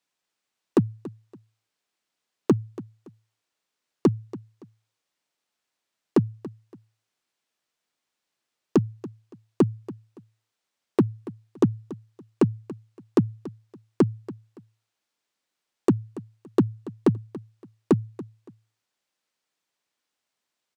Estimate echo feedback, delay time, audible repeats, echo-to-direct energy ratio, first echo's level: 27%, 283 ms, 2, −17.0 dB, −17.5 dB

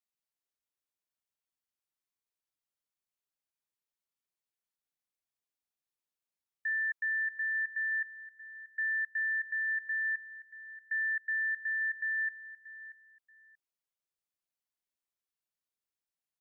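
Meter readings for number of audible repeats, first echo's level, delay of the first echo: 2, −15.5 dB, 632 ms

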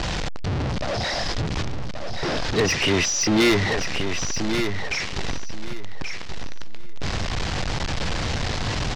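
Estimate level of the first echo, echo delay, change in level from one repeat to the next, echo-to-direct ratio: −7.0 dB, 1,129 ms, −13.5 dB, −7.0 dB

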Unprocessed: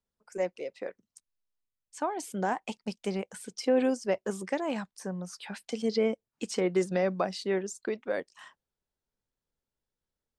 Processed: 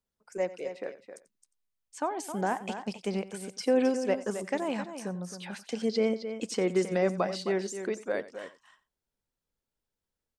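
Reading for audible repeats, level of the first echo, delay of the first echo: 3, −17.0 dB, 90 ms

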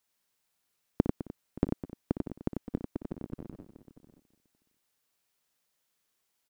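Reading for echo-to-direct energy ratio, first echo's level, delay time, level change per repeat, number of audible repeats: −3.0 dB, −12.0 dB, 59 ms, repeats not evenly spaced, 9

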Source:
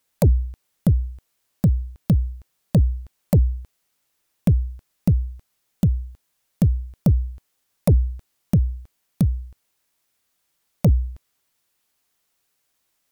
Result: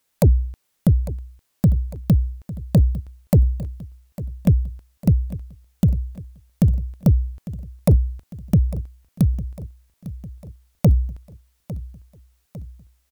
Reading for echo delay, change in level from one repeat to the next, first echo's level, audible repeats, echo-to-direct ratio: 852 ms, −5.0 dB, −16.0 dB, 4, −14.5 dB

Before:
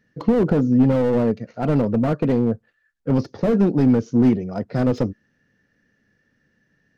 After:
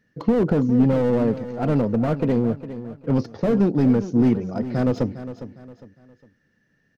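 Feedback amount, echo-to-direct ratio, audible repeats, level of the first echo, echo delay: 35%, −12.5 dB, 3, −13.0 dB, 407 ms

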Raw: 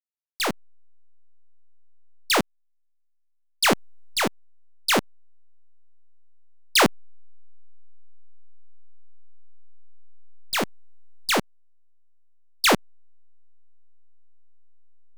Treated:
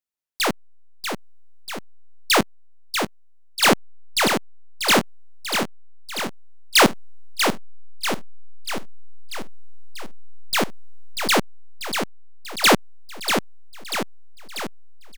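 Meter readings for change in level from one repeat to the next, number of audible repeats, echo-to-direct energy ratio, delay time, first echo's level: −4.5 dB, 7, −4.5 dB, 640 ms, −6.5 dB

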